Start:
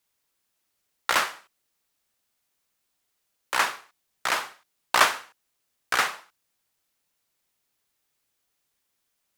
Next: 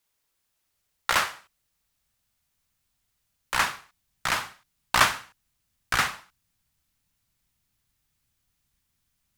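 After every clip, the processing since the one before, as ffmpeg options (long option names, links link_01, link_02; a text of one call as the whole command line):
ffmpeg -i in.wav -af "asubboost=boost=10:cutoff=140" out.wav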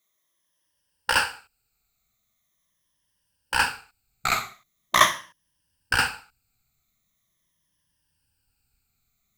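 ffmpeg -i in.wav -af "afftfilt=real='re*pow(10,15/40*sin(2*PI*(1.2*log(max(b,1)*sr/1024/100)/log(2)-(-0.42)*(pts-256)/sr)))':imag='im*pow(10,15/40*sin(2*PI*(1.2*log(max(b,1)*sr/1024/100)/log(2)-(-0.42)*(pts-256)/sr)))':win_size=1024:overlap=0.75,volume=-1dB" out.wav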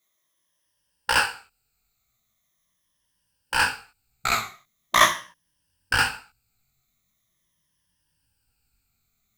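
ffmpeg -i in.wav -af "flanger=delay=16.5:depth=6:speed=0.95,volume=4dB" out.wav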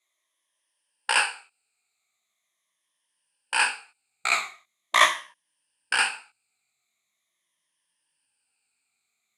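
ffmpeg -i in.wav -af "highpass=460,equalizer=frequency=510:width_type=q:width=4:gain=-3,equalizer=frequency=1400:width_type=q:width=4:gain=-4,equalizer=frequency=2400:width_type=q:width=4:gain=6,equalizer=frequency=5800:width_type=q:width=4:gain=-7,equalizer=frequency=9000:width_type=q:width=4:gain=7,lowpass=frequency=9900:width=0.5412,lowpass=frequency=9900:width=1.3066,volume=-1dB" out.wav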